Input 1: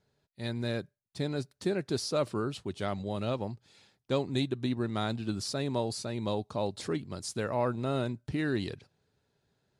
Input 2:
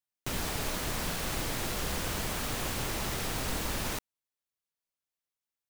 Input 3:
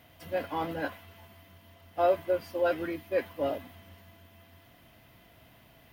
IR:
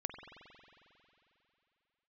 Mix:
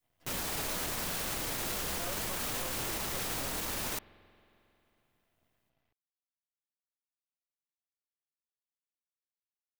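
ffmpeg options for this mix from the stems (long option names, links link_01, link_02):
-filter_complex "[1:a]lowshelf=frequency=170:gain=-6.5,alimiter=level_in=3.5dB:limit=-24dB:level=0:latency=1,volume=-3.5dB,crystalizer=i=0.5:c=0,volume=1dB,asplit=2[link_01][link_02];[link_02]volume=-15.5dB[link_03];[2:a]agate=range=-33dB:threshold=-52dB:ratio=3:detection=peak,highshelf=frequency=4700:gain=-7,aeval=exprs='max(val(0),0)':channel_layout=same,volume=-12.5dB[link_04];[3:a]atrim=start_sample=2205[link_05];[link_03][link_05]afir=irnorm=-1:irlink=0[link_06];[link_01][link_04][link_06]amix=inputs=3:normalize=0,alimiter=level_in=2dB:limit=-24dB:level=0:latency=1:release=27,volume=-2dB"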